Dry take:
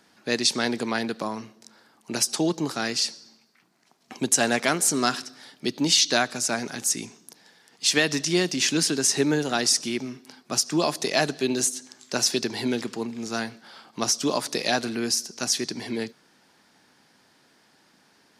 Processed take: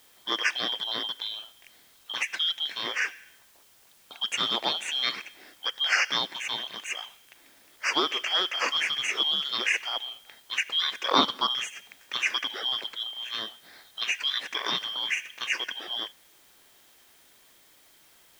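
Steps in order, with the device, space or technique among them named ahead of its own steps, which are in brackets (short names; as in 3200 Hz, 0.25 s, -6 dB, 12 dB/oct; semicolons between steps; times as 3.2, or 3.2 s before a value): 11.08–11.49 band shelf 1600 Hz +10 dB 2.3 oct; split-band scrambled radio (four-band scrambler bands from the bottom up 2413; BPF 400–2900 Hz; white noise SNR 28 dB)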